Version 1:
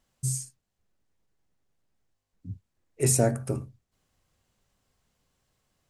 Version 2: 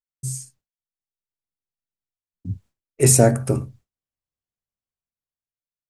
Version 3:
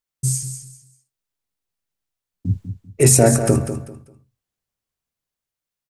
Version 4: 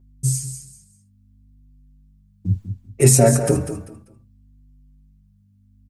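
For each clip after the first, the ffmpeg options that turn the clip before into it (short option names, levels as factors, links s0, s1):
-af "agate=range=0.0224:threshold=0.00282:ratio=3:detection=peak,dynaudnorm=f=370:g=7:m=5.01"
-filter_complex "[0:a]alimiter=limit=0.299:level=0:latency=1:release=122,asplit=2[s0][s1];[s1]aecho=0:1:196|392|588:0.335|0.0871|0.0226[s2];[s0][s2]amix=inputs=2:normalize=0,volume=2.51"
-filter_complex "[0:a]aeval=exprs='val(0)+0.00316*(sin(2*PI*50*n/s)+sin(2*PI*2*50*n/s)/2+sin(2*PI*3*50*n/s)/3+sin(2*PI*4*50*n/s)/4+sin(2*PI*5*50*n/s)/5)':c=same,asplit=2[s0][s1];[s1]adelay=5.4,afreqshift=0.67[s2];[s0][s2]amix=inputs=2:normalize=1,volume=1.19"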